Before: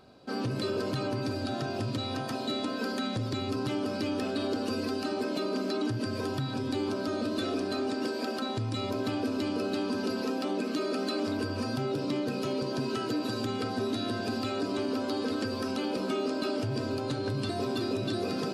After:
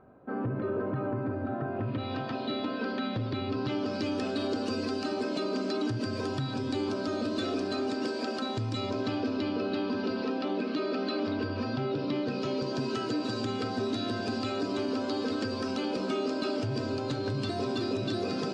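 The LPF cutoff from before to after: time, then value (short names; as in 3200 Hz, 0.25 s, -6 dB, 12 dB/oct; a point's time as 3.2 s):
LPF 24 dB/oct
1.7 s 1700 Hz
2.14 s 3800 Hz
3.46 s 3800 Hz
4.13 s 7900 Hz
8.65 s 7900 Hz
9.56 s 4400 Hz
12.07 s 4400 Hz
12.77 s 7600 Hz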